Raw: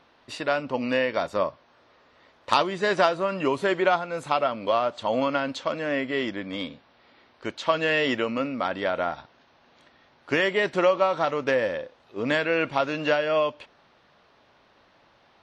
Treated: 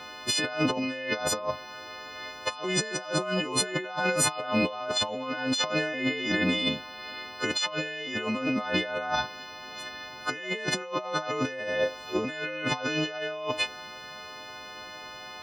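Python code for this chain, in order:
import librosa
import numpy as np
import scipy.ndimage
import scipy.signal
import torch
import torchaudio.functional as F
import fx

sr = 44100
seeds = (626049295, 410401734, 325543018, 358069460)

y = fx.freq_snap(x, sr, grid_st=3)
y = fx.over_compress(y, sr, threshold_db=-35.0, ratio=-1.0)
y = y * 10.0 ** (4.0 / 20.0)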